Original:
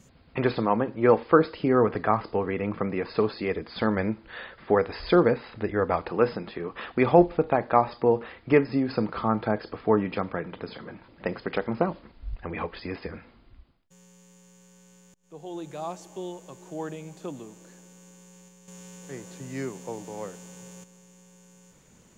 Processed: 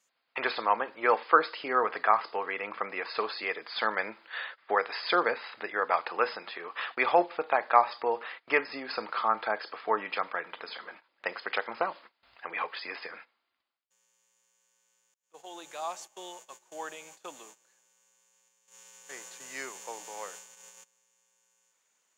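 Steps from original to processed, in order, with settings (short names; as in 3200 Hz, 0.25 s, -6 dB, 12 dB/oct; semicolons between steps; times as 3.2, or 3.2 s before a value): gate -44 dBFS, range -16 dB; HPF 960 Hz 12 dB/oct; gain +4 dB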